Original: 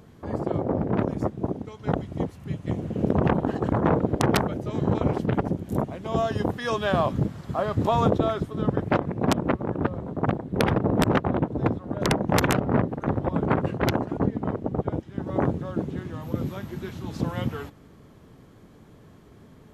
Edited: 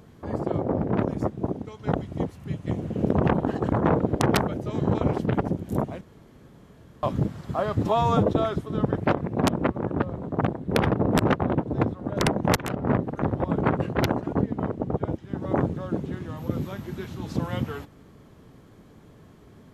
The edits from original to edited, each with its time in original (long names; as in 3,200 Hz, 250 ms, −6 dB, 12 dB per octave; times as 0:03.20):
0:06.01–0:07.03: fill with room tone
0:07.83–0:08.14: time-stretch 1.5×
0:12.41–0:12.91: fade in equal-power, from −21 dB